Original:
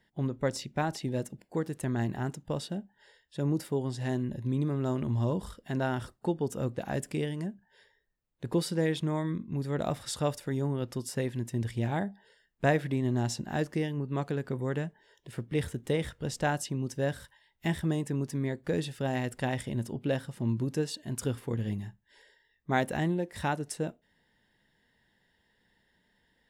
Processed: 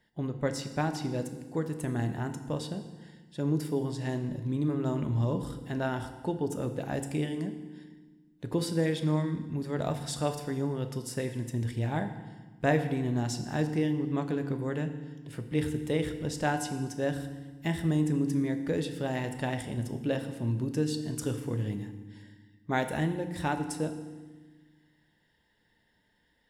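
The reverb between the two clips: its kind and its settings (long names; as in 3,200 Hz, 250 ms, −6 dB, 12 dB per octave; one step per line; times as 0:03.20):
feedback delay network reverb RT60 1.3 s, low-frequency decay 1.55×, high-frequency decay 0.9×, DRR 7 dB
level −1 dB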